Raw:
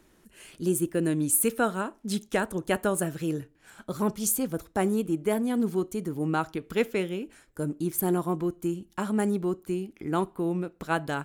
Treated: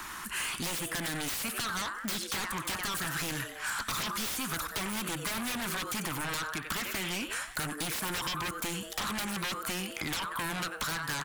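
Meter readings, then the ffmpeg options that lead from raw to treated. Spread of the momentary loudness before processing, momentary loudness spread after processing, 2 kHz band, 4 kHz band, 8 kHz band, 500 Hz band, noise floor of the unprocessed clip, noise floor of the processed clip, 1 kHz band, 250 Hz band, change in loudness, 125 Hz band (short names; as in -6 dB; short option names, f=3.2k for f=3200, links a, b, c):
7 LU, 2 LU, +3.5 dB, +10.0 dB, -2.5 dB, -14.5 dB, -62 dBFS, -43 dBFS, -2.5 dB, -11.5 dB, -4.5 dB, -8.0 dB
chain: -filter_complex "[0:a]lowshelf=f=740:t=q:w=3:g=-13,acompressor=threshold=-36dB:ratio=5,asplit=5[a][b][c][d][e];[b]adelay=92,afreqshift=150,volume=-16dB[f];[c]adelay=184,afreqshift=300,volume=-23.5dB[g];[d]adelay=276,afreqshift=450,volume=-31.1dB[h];[e]adelay=368,afreqshift=600,volume=-38.6dB[i];[a][f][g][h][i]amix=inputs=5:normalize=0,aeval=exprs='0.075*sin(PI/2*10*val(0)/0.075)':c=same,acrossover=split=250|1100|4900[j][k][l][m];[j]acompressor=threshold=-40dB:ratio=4[n];[k]acompressor=threshold=-43dB:ratio=4[o];[l]acompressor=threshold=-35dB:ratio=4[p];[m]acompressor=threshold=-37dB:ratio=4[q];[n][o][p][q]amix=inputs=4:normalize=0,volume=-1dB"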